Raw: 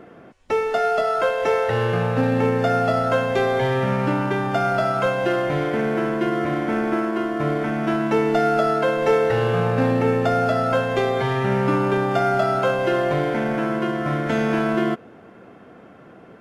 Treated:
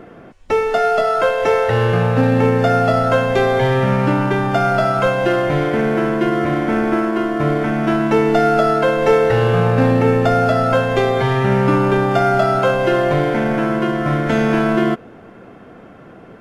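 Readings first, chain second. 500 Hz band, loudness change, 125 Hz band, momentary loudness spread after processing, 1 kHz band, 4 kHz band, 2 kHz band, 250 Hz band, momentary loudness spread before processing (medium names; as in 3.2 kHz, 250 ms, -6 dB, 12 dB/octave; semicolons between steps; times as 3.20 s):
+4.5 dB, +5.0 dB, +7.0 dB, 4 LU, +4.5 dB, +4.5 dB, +4.5 dB, +5.0 dB, 4 LU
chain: bass shelf 64 Hz +11 dB; trim +4.5 dB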